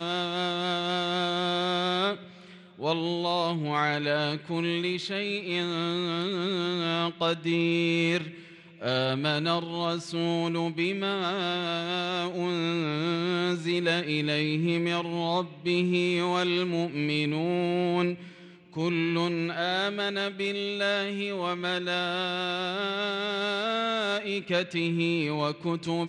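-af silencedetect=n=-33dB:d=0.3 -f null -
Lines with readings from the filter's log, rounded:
silence_start: 2.15
silence_end: 2.81 | silence_duration: 0.65
silence_start: 8.29
silence_end: 8.82 | silence_duration: 0.53
silence_start: 18.15
silence_end: 18.76 | silence_duration: 0.62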